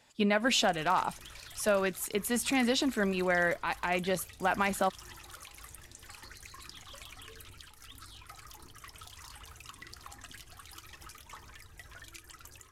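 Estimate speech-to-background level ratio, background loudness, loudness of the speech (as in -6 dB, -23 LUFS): 19.0 dB, -49.0 LUFS, -30.0 LUFS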